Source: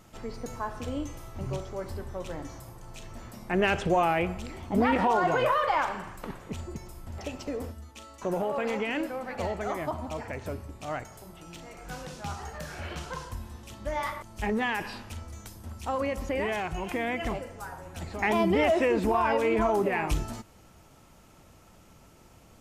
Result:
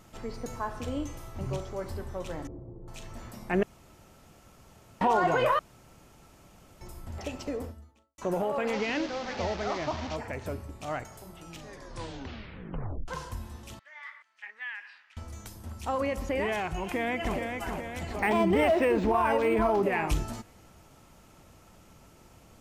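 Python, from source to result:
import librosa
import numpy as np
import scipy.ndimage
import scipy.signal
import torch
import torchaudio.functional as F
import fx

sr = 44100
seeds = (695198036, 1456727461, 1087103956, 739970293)

y = fx.lowpass_res(x, sr, hz=390.0, q=2.4, at=(2.47, 2.88))
y = fx.studio_fade_out(y, sr, start_s=7.47, length_s=0.71)
y = fx.delta_mod(y, sr, bps=32000, step_db=-32.5, at=(8.73, 10.16))
y = fx.ladder_bandpass(y, sr, hz=2100.0, resonance_pct=50, at=(13.79, 15.17))
y = fx.echo_throw(y, sr, start_s=16.82, length_s=0.56, ms=420, feedback_pct=60, wet_db=-5.0)
y = fx.resample_linear(y, sr, factor=4, at=(18.19, 19.83))
y = fx.edit(y, sr, fx.room_tone_fill(start_s=3.63, length_s=1.38),
    fx.room_tone_fill(start_s=5.59, length_s=1.22),
    fx.tape_stop(start_s=11.48, length_s=1.6), tone=tone)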